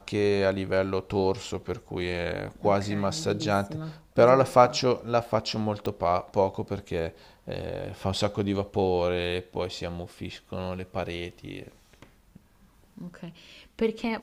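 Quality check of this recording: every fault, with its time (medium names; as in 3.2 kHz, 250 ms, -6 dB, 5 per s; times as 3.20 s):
5.86 s: pop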